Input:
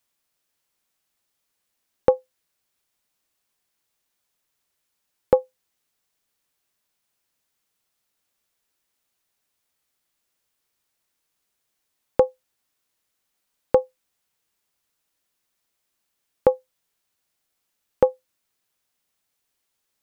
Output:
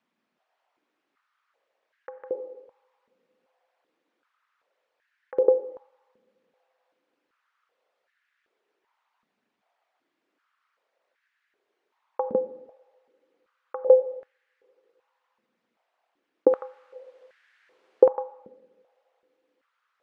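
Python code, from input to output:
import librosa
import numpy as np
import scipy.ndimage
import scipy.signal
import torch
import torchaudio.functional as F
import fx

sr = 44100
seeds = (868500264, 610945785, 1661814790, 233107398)

p1 = fx.envelope_sharpen(x, sr, power=1.5)
p2 = p1 + fx.echo_single(p1, sr, ms=154, db=-8.0, dry=0)
p3 = fx.rev_double_slope(p2, sr, seeds[0], early_s=0.99, late_s=3.5, knee_db=-27, drr_db=18.5)
p4 = fx.over_compress(p3, sr, threshold_db=-27.0, ratio=-1.0)
p5 = p3 + F.gain(torch.from_numpy(p4), 2.0).numpy()
p6 = fx.dmg_noise_colour(p5, sr, seeds[1], colour='white', level_db=-54.0, at=(16.48, 18.03), fade=0.02)
p7 = scipy.signal.sosfilt(scipy.signal.butter(2, 2200.0, 'lowpass', fs=sr, output='sos'), p6)
p8 = fx.filter_held_highpass(p7, sr, hz=2.6, low_hz=220.0, high_hz=1700.0)
y = F.gain(torch.from_numpy(p8), -6.0).numpy()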